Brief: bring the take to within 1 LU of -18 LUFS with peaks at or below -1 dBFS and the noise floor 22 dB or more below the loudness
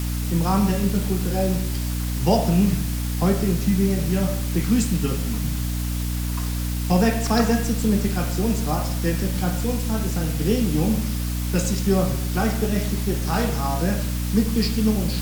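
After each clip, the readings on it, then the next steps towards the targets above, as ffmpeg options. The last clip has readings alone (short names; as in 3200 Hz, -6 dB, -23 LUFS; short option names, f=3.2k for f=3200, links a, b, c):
hum 60 Hz; harmonics up to 300 Hz; hum level -23 dBFS; noise floor -25 dBFS; noise floor target -45 dBFS; loudness -22.5 LUFS; peak -6.0 dBFS; loudness target -18.0 LUFS
-> -af "bandreject=f=60:t=h:w=6,bandreject=f=120:t=h:w=6,bandreject=f=180:t=h:w=6,bandreject=f=240:t=h:w=6,bandreject=f=300:t=h:w=6"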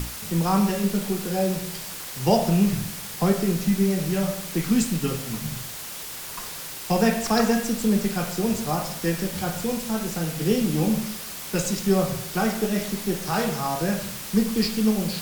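hum none; noise floor -36 dBFS; noise floor target -47 dBFS
-> -af "afftdn=nr=11:nf=-36"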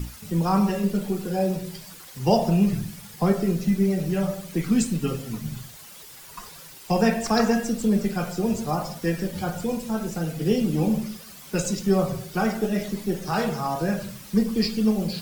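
noise floor -44 dBFS; noise floor target -47 dBFS
-> -af "afftdn=nr=6:nf=-44"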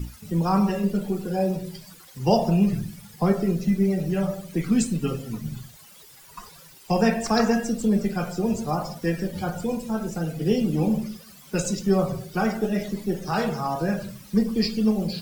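noise floor -49 dBFS; loudness -25.0 LUFS; peak -6.0 dBFS; loudness target -18.0 LUFS
-> -af "volume=7dB,alimiter=limit=-1dB:level=0:latency=1"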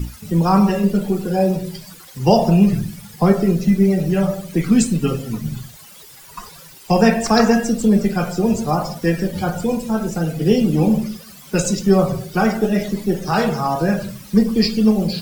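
loudness -18.0 LUFS; peak -1.0 dBFS; noise floor -42 dBFS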